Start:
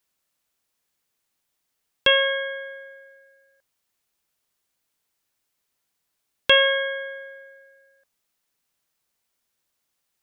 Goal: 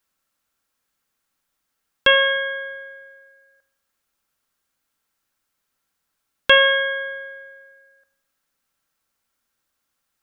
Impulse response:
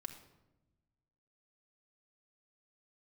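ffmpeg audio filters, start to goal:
-filter_complex "[0:a]asplit=2[s0][s1];[s1]equalizer=f=1400:t=o:w=0.98:g=14[s2];[1:a]atrim=start_sample=2205,lowshelf=f=300:g=9[s3];[s2][s3]afir=irnorm=-1:irlink=0,volume=0.668[s4];[s0][s4]amix=inputs=2:normalize=0,volume=0.708"

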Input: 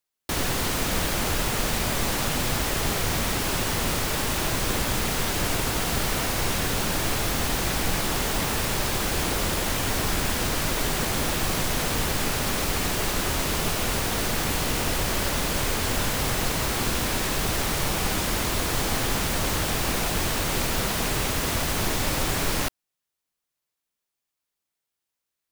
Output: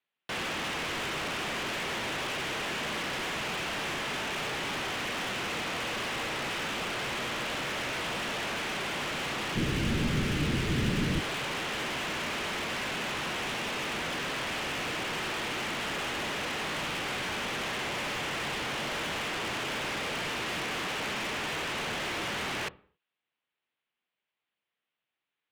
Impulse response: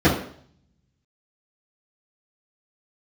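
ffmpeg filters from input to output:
-filter_complex "[0:a]asplit=2[s0][s1];[1:a]atrim=start_sample=2205,afade=t=out:st=0.34:d=0.01,atrim=end_sample=15435[s2];[s1][s2]afir=irnorm=-1:irlink=0,volume=0.00841[s3];[s0][s3]amix=inputs=2:normalize=0,highpass=f=360:t=q:w=0.5412,highpass=f=360:t=q:w=1.307,lowpass=f=3300:t=q:w=0.5176,lowpass=f=3300:t=q:w=0.7071,lowpass=f=3300:t=q:w=1.932,afreqshift=-200,crystalizer=i=4:c=0,asoftclip=type=hard:threshold=0.0251,asplit=3[s4][s5][s6];[s4]afade=t=out:st=9.55:d=0.02[s7];[s5]asubboost=boost=9:cutoff=240,afade=t=in:st=9.55:d=0.02,afade=t=out:st=11.19:d=0.02[s8];[s6]afade=t=in:st=11.19:d=0.02[s9];[s7][s8][s9]amix=inputs=3:normalize=0"

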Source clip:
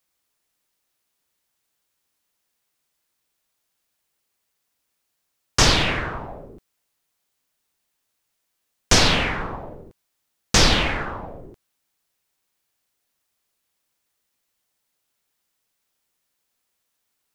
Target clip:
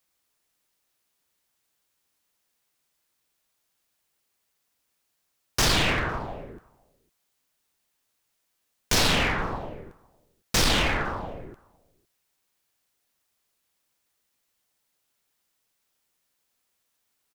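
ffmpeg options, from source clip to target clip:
-filter_complex "[0:a]volume=8.91,asoftclip=hard,volume=0.112,asplit=2[s0][s1];[s1]adelay=507.3,volume=0.0398,highshelf=f=4000:g=-11.4[s2];[s0][s2]amix=inputs=2:normalize=0"

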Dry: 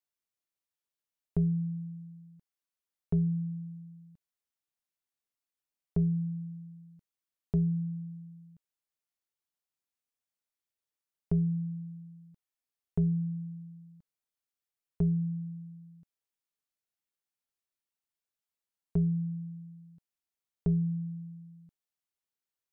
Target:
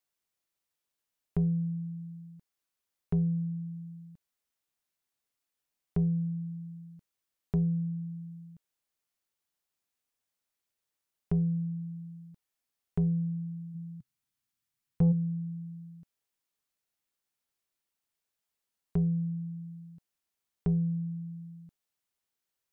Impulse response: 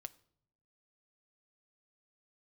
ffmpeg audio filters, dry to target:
-filter_complex "[0:a]asplit=3[s0][s1][s2];[s0]afade=t=out:st=13.74:d=0.02[s3];[s1]equalizer=f=125:t=o:w=1:g=10,equalizer=f=250:t=o:w=1:g=4,equalizer=f=500:t=o:w=1:g=-11,afade=t=in:st=13.74:d=0.02,afade=t=out:st=15.11:d=0.02[s4];[s2]afade=t=in:st=15.11:d=0.02[s5];[s3][s4][s5]amix=inputs=3:normalize=0,asplit=2[s6][s7];[s7]acompressor=threshold=0.00562:ratio=6,volume=0.794[s8];[s6][s8]amix=inputs=2:normalize=0,asoftclip=type=tanh:threshold=0.119"

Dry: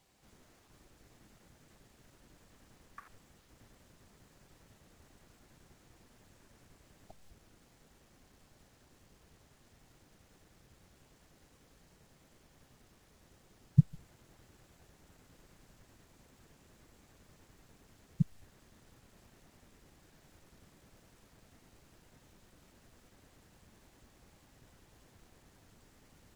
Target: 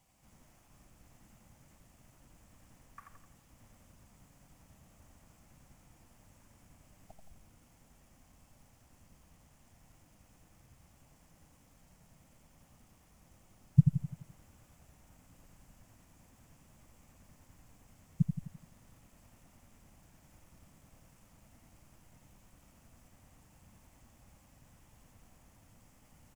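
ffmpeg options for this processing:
-af "equalizer=f=400:t=o:w=0.67:g=-11,equalizer=f=1600:t=o:w=0.67:g=-6,equalizer=f=4000:t=o:w=0.67:g=-10,aecho=1:1:85|170|255|340|425|510:0.473|0.232|0.114|0.0557|0.0273|0.0134,volume=1.19"

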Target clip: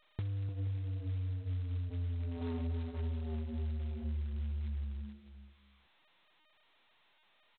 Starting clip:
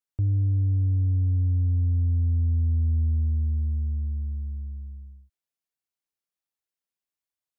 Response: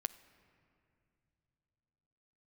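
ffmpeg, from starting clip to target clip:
-filter_complex "[0:a]lowshelf=f=130:g=-6.5,asplit=3[s0][s1][s2];[s0]afade=t=out:st=1.89:d=0.02[s3];[s1]aphaser=in_gain=1:out_gain=1:delay=2.1:decay=0.64:speed=1.2:type=triangular,afade=t=in:st=1.89:d=0.02,afade=t=out:st=4.35:d=0.02[s4];[s2]afade=t=in:st=4.35:d=0.02[s5];[s3][s4][s5]amix=inputs=3:normalize=0,acrusher=bits=7:mode=log:mix=0:aa=0.000001,equalizer=f=410:w=0.61:g=7.5,aeval=exprs='0.237*sin(PI/2*2.51*val(0)/0.237)':c=same,anlmdn=1580,highpass=f=77:p=1,asoftclip=type=tanh:threshold=0.133,aecho=1:1:300|480|588|652.8|691.7:0.631|0.398|0.251|0.158|0.1,acompressor=threshold=0.0447:ratio=10,volume=0.422" -ar 8000 -c:a adpcm_g726 -b:a 16k

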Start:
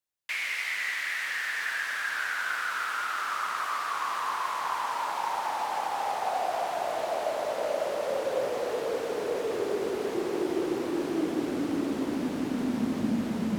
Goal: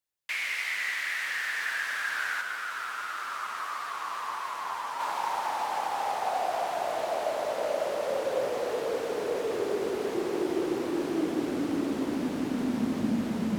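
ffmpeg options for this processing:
-filter_complex "[0:a]asplit=3[s0][s1][s2];[s0]afade=t=out:st=2.4:d=0.02[s3];[s1]flanger=delay=7.1:depth=3.3:regen=44:speed=1.8:shape=triangular,afade=t=in:st=2.4:d=0.02,afade=t=out:st=4.99:d=0.02[s4];[s2]afade=t=in:st=4.99:d=0.02[s5];[s3][s4][s5]amix=inputs=3:normalize=0"

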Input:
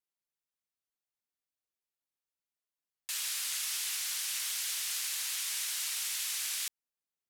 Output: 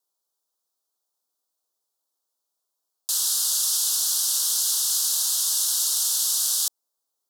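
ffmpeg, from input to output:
-filter_complex "[0:a]asuperstop=centerf=2200:order=4:qfactor=0.82,acrossover=split=540|2000[s0][s1][s2];[s1]alimiter=level_in=42.2:limit=0.0631:level=0:latency=1,volume=0.0237[s3];[s0][s3][s2]amix=inputs=3:normalize=0,highpass=390,acontrast=66,volume=2.11"

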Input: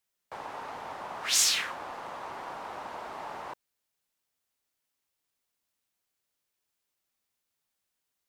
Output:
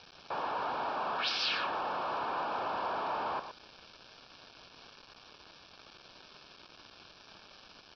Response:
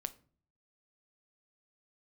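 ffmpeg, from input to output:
-af "aeval=exprs='val(0)+0.5*0.02*sgn(val(0))':c=same,highpass=f=210:p=1,aemphasis=mode=reproduction:type=75fm,bandreject=f=387.5:t=h:w=4,bandreject=f=775:t=h:w=4,bandreject=f=1162.5:t=h:w=4,aresample=11025,aeval=exprs='val(0)*gte(abs(val(0)),0.00596)':c=same,aresample=44100,asuperstop=centerf=1900:order=4:qfactor=4.4,aecho=1:1:123:0.316,asetrate=45938,aresample=44100"

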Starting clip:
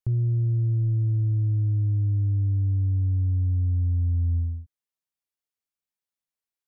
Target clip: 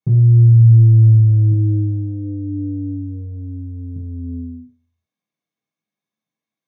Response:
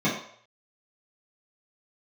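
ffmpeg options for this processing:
-filter_complex "[0:a]asettb=1/sr,asplit=3[s0][s1][s2];[s0]atrim=end=1.514[s3];[s1]atrim=start=1.51:end=3.96,asetpts=PTS-STARTPTS,afade=t=in:d=0.004:c=qsin,afade=t=out:st=2.446:d=0.004:c=qsin,aecho=1:1:4.2:0.31,atrim=end_sample=108045[s4];[s2]atrim=start=3.956[s5];[s3][s4]acrossfade=d=0.004:c1=hsin:c2=qsin[s6];[s6][s5]acrossfade=d=0.004:c1=qsin:c2=hsin[s7];[1:a]atrim=start_sample=2205[s8];[s7][s8]afir=irnorm=-1:irlink=0,volume=0.531"

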